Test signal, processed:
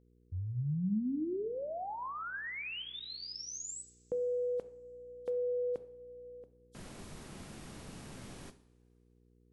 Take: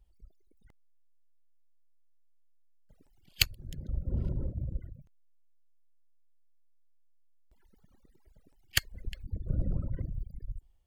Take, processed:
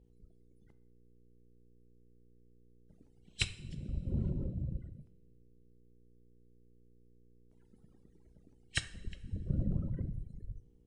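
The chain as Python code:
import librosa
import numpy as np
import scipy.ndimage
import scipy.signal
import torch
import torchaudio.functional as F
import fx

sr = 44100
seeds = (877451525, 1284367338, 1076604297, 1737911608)

y = fx.freq_compress(x, sr, knee_hz=3100.0, ratio=1.5)
y = fx.peak_eq(y, sr, hz=200.0, db=9.0, octaves=2.2)
y = fx.rev_double_slope(y, sr, seeds[0], early_s=0.54, late_s=2.4, knee_db=-19, drr_db=10.5)
y = fx.dmg_buzz(y, sr, base_hz=60.0, harmonics=8, level_db=-60.0, tilt_db=-4, odd_only=False)
y = y * 10.0 ** (-6.5 / 20.0)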